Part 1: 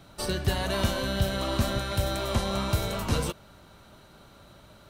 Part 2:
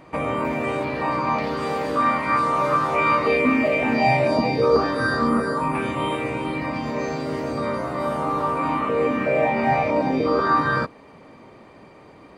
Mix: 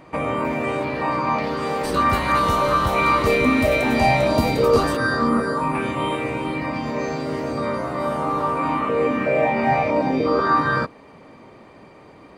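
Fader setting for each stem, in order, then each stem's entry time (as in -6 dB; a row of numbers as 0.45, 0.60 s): 0.0, +1.0 dB; 1.65, 0.00 s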